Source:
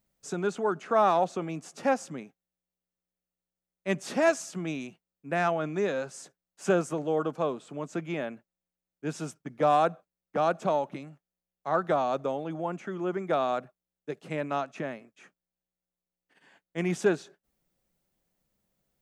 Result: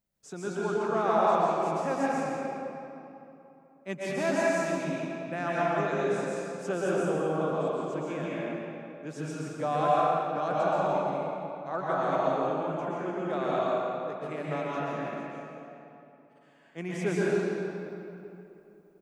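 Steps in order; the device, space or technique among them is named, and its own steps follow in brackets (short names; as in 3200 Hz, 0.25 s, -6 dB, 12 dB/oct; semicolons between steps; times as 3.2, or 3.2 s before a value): cave (echo 0.17 s -10 dB; reverb RT60 3.1 s, pre-delay 0.115 s, DRR -7 dB); gain -7.5 dB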